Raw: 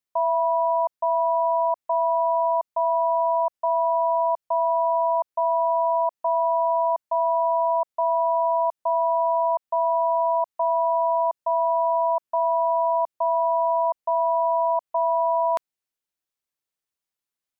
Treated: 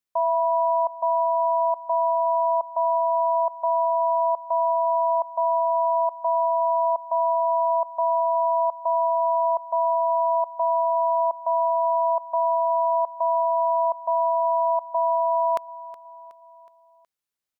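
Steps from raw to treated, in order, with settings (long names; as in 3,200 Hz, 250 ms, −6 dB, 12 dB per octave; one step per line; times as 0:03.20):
repeating echo 369 ms, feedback 52%, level −18 dB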